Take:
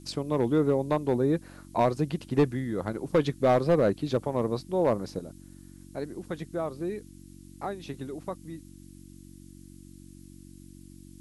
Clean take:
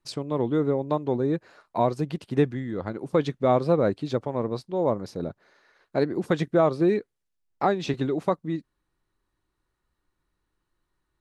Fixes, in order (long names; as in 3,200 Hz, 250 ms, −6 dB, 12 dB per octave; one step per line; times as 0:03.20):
clipped peaks rebuilt −15.5 dBFS
hum removal 46.7 Hz, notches 7
noise reduction from a noise print 30 dB
level correction +11.5 dB, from 0:05.19